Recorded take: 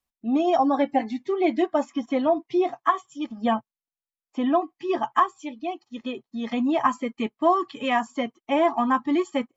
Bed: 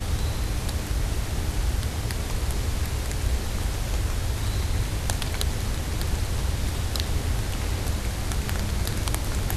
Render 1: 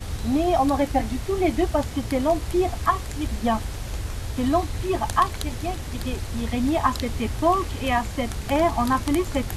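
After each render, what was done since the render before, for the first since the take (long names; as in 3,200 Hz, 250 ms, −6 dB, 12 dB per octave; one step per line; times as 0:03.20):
mix in bed −4 dB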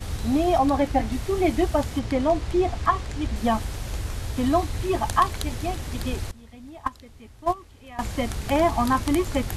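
0:00.58–0:01.12: high-shelf EQ 7,700 Hz −8.5 dB
0:01.99–0:03.36: high-frequency loss of the air 60 metres
0:06.31–0:07.99: noise gate −17 dBFS, range −20 dB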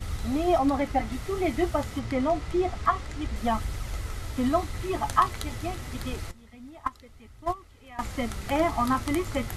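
hollow resonant body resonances 1,300/2,000 Hz, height 9 dB, ringing for 25 ms
flanger 0.27 Hz, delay 0.2 ms, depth 9.4 ms, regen +69%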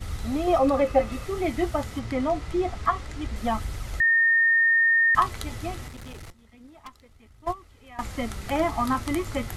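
0:00.47–0:01.25: hollow resonant body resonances 530/1,200/2,600 Hz, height 16 dB, ringing for 90 ms
0:04.00–0:05.15: beep over 1,830 Hz −16.5 dBFS
0:05.88–0:07.47: tube saturation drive 37 dB, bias 0.7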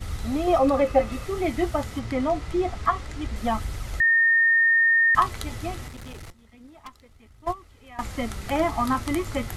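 level +1 dB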